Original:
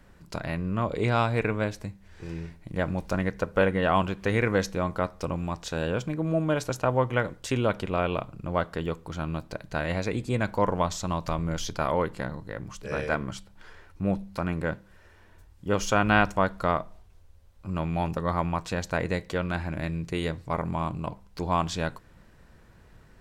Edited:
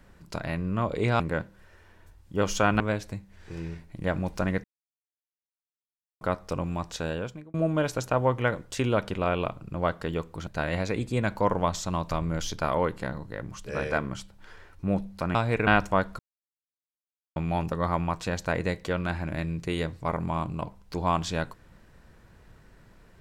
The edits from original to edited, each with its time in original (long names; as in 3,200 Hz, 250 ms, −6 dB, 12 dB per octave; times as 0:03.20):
0:01.20–0:01.52: swap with 0:14.52–0:16.12
0:03.36–0:04.93: silence
0:05.70–0:06.26: fade out
0:09.19–0:09.64: remove
0:16.64–0:17.81: silence